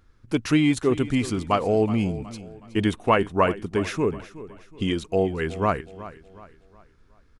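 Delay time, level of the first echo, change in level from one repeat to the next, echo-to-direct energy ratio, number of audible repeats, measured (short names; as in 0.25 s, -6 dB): 0.369 s, -16.0 dB, -8.0 dB, -15.5 dB, 3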